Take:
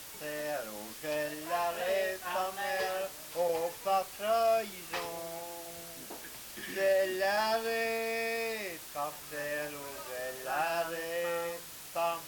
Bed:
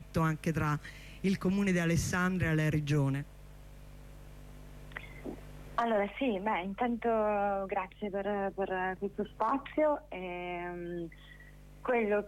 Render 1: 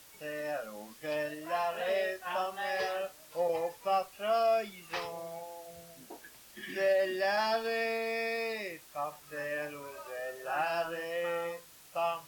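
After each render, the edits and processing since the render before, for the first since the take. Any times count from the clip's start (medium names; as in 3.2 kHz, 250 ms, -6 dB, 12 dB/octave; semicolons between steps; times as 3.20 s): noise print and reduce 9 dB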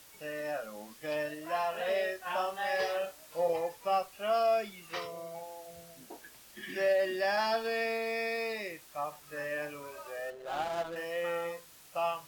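2.23–3.53 s: doubling 30 ms -6.5 dB; 4.91–5.35 s: comb of notches 840 Hz; 10.30–10.96 s: median filter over 25 samples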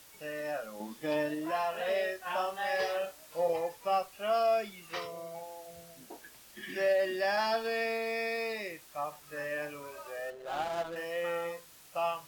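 0.80–1.51 s: small resonant body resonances 220/330/870/3500 Hz, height 8 dB, ringing for 20 ms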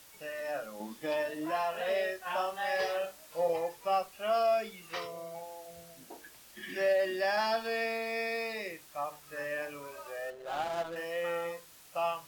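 hum notches 50/100/150/200/250/300/350/400/450 Hz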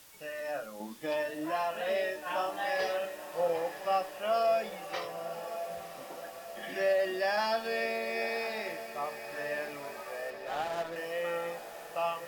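echo that smears into a reverb 1072 ms, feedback 62%, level -11.5 dB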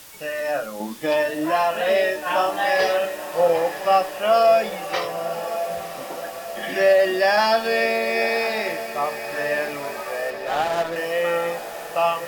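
trim +12 dB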